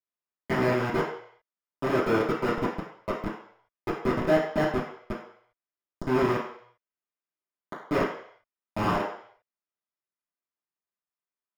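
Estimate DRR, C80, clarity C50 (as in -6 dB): -11.0 dB, 7.5 dB, 4.5 dB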